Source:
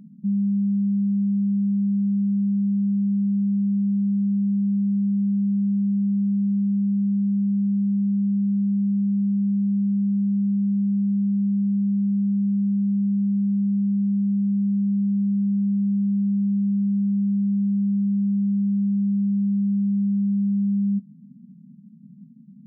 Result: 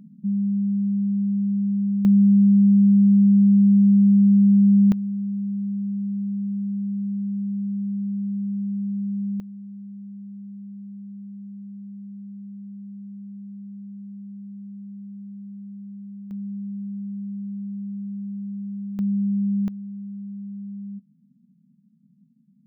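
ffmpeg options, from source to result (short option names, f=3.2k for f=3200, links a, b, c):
-af "asetnsamples=n=441:p=0,asendcmd='2.05 volume volume 7dB;4.92 volume volume -5dB;9.4 volume volume -16.5dB;16.31 volume volume -10dB;18.99 volume volume -1dB;19.68 volume volume -13dB',volume=-1dB"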